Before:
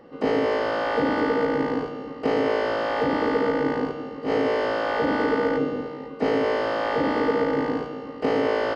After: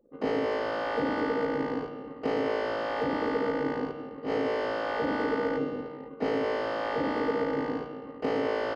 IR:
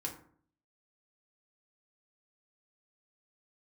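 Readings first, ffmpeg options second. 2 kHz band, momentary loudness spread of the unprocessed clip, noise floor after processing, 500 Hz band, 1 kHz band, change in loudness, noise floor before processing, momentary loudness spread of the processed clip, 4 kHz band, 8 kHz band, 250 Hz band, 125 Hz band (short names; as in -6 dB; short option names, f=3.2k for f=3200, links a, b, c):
-6.0 dB, 6 LU, -43 dBFS, -6.0 dB, -6.0 dB, -6.0 dB, -37 dBFS, 6 LU, -6.0 dB, n/a, -6.0 dB, -6.0 dB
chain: -af "anlmdn=0.398,volume=-6dB"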